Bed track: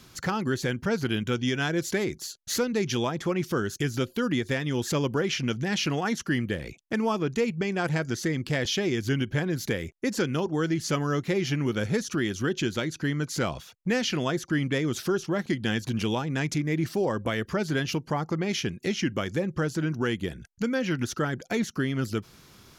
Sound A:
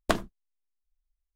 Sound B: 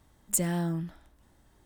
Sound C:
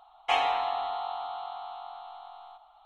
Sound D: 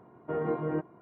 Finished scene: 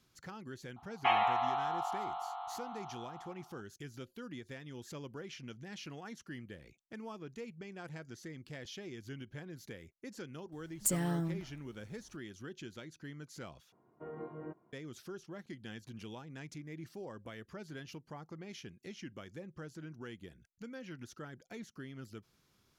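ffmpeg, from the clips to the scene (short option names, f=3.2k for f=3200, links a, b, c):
-filter_complex "[0:a]volume=-19.5dB[a];[3:a]highpass=760,lowpass=2.2k[b];[a]asplit=2[c][d];[c]atrim=end=13.724[e];[4:a]atrim=end=1.01,asetpts=PTS-STARTPTS,volume=-14.5dB[f];[d]atrim=start=14.726[g];[b]atrim=end=2.85,asetpts=PTS-STARTPTS,afade=t=in:d=0.004:c=hsin,afade=t=out:st=2.846:d=0.004:c=hsin,adelay=760[h];[2:a]atrim=end=1.65,asetpts=PTS-STARTPTS,volume=-4.5dB,afade=t=in:d=0.004:c=hsin,afade=t=out:st=1.646:d=0.004:c=hsin,adelay=10520[i];[e][f]acrossfade=d=0.004:c1=hsin:c2=hsin[j];[j][g]acrossfade=d=0.004:c1=hsin:c2=hsin[k];[k][h][i]amix=inputs=3:normalize=0"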